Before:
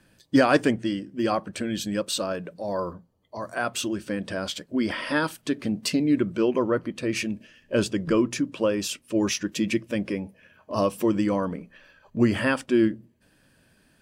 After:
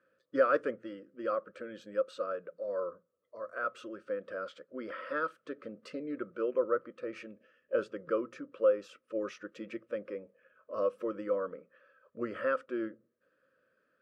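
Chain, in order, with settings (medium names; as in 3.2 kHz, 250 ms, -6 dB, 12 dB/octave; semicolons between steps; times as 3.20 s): two resonant band-passes 820 Hz, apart 1.3 oct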